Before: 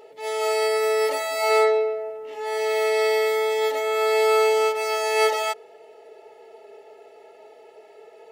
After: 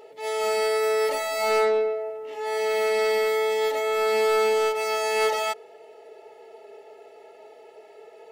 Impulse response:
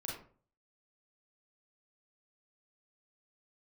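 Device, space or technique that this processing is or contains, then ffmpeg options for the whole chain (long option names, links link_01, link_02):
saturation between pre-emphasis and de-emphasis: -af "highshelf=frequency=2000:gain=9.5,asoftclip=type=tanh:threshold=-14.5dB,highshelf=frequency=2000:gain=-9.5"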